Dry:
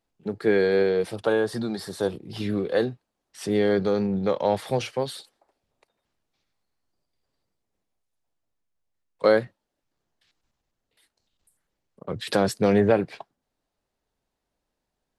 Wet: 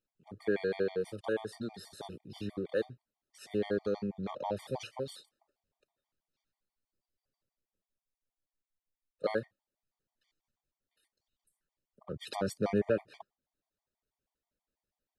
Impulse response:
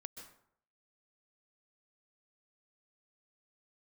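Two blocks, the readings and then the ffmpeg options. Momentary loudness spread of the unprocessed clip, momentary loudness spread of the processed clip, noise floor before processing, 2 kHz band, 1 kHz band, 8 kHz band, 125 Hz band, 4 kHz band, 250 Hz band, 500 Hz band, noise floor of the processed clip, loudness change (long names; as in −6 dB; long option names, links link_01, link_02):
14 LU, 15 LU, −82 dBFS, −11.5 dB, −12.0 dB, −12.0 dB, −11.5 dB, −12.0 dB, −11.5 dB, −11.5 dB, below −85 dBFS, −11.5 dB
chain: -af "afftfilt=real='re*gt(sin(2*PI*6.2*pts/sr)*(1-2*mod(floor(b*sr/1024/610),2)),0)':imag='im*gt(sin(2*PI*6.2*pts/sr)*(1-2*mod(floor(b*sr/1024/610),2)),0)':win_size=1024:overlap=0.75,volume=-8.5dB"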